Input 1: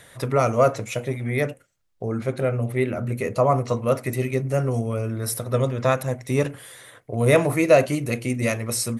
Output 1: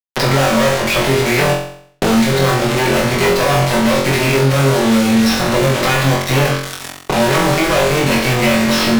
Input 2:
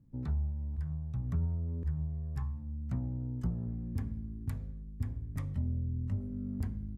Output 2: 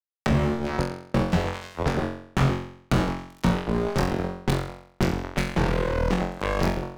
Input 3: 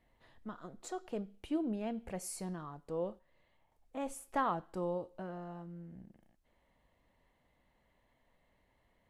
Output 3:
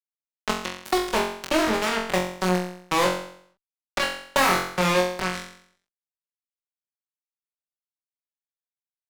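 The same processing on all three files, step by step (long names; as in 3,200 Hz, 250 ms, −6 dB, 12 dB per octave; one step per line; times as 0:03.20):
lower of the sound and its delayed copy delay 5.3 ms
low-pass filter 5,100 Hz 24 dB per octave
high-shelf EQ 3,100 Hz +11.5 dB
mains-hum notches 50/100/150/200/250/300/350/400 Hz
in parallel at −2 dB: speech leveller within 4 dB 0.5 s
on the sum: treble cut that deepens with the level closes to 2,200 Hz, closed at −15 dBFS
fuzz pedal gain 41 dB, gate −31 dBFS
on a send: flutter between parallel walls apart 3.8 metres, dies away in 0.49 s
on the sum: multiband upward and downward compressor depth 70%
level −2 dB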